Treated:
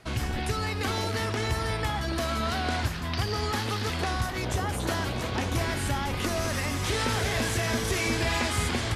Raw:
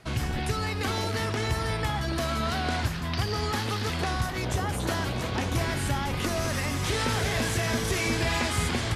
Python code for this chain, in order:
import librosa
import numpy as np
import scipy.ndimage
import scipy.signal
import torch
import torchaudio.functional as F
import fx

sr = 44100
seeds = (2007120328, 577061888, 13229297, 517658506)

y = fx.peak_eq(x, sr, hz=150.0, db=-6.0, octaves=0.35)